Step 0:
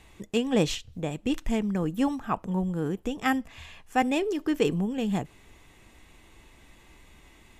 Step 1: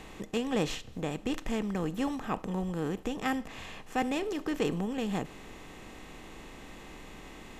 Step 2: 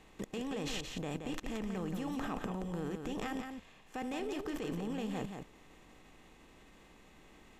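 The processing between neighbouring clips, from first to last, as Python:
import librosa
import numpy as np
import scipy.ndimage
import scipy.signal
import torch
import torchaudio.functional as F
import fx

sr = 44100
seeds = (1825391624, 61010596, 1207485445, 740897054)

y1 = fx.bin_compress(x, sr, power=0.6)
y1 = F.gain(torch.from_numpy(y1), -8.0).numpy()
y2 = fx.level_steps(y1, sr, step_db=21)
y2 = y2 + 10.0 ** (-6.0 / 20.0) * np.pad(y2, (int(175 * sr / 1000.0), 0))[:len(y2)]
y2 = F.gain(torch.from_numpy(y2), 3.5).numpy()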